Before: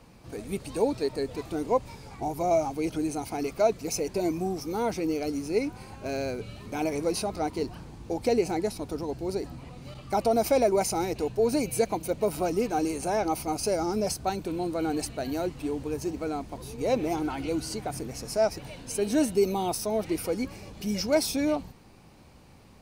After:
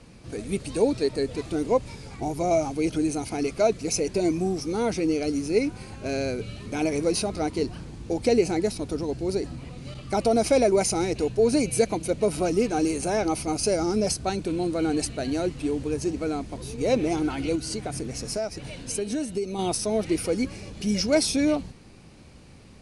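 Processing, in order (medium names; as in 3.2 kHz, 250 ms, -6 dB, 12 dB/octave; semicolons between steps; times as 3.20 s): steep low-pass 11 kHz 72 dB/octave; peaking EQ 890 Hz -7 dB 0.99 oct; 17.55–19.59 s: compression 6:1, threshold -31 dBFS, peak gain reduction 11 dB; trim +5 dB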